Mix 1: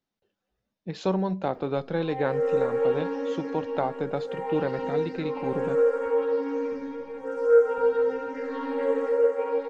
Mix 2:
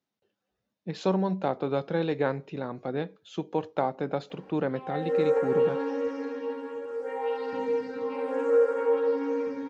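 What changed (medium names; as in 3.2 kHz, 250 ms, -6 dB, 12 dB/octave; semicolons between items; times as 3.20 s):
background: entry +2.75 s; master: add high-pass 93 Hz 12 dB/octave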